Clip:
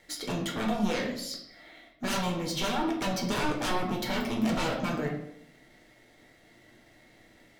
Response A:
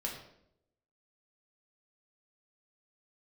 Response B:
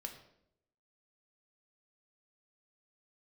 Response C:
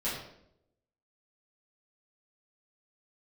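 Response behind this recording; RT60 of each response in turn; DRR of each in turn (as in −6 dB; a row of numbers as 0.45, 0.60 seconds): A; 0.75, 0.75, 0.75 seconds; −1.5, 4.0, −10.5 decibels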